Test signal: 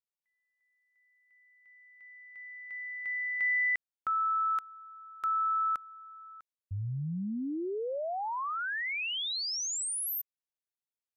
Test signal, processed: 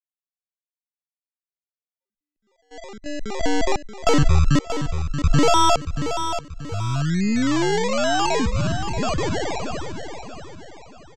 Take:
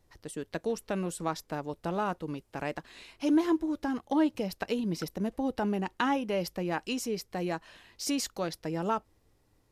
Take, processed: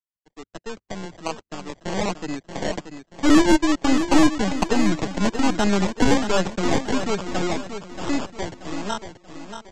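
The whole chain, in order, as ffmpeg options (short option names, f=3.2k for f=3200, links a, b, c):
-filter_complex "[0:a]anlmdn=0.398,highpass=140,aeval=exprs='0.251*(cos(1*acos(clip(val(0)/0.251,-1,1)))-cos(1*PI/2))+0.00251*(cos(3*acos(clip(val(0)/0.251,-1,1)))-cos(3*PI/2))+0.0501*(cos(6*acos(clip(val(0)/0.251,-1,1)))-cos(6*PI/2))+0.0631*(cos(8*acos(clip(val(0)/0.251,-1,1)))-cos(8*PI/2))':c=same,equalizer=f=500:t=o:w=0.33:g=-6,equalizer=f=2k:t=o:w=0.33:g=-12,equalizer=f=6.3k:t=o:w=0.33:g=-7,dynaudnorm=f=330:g=13:m=15dB,aresample=16000,acrusher=samples=10:mix=1:aa=0.000001:lfo=1:lforange=6:lforate=1.2,aresample=44100,agate=range=-31dB:threshold=-35dB:ratio=3:release=446:detection=peak,acrossover=split=200[a][b];[b]asoftclip=type=tanh:threshold=-8dB[c];[a][c]amix=inputs=2:normalize=0,aecho=1:1:631|1262|1893|2524:0.355|0.138|0.054|0.021"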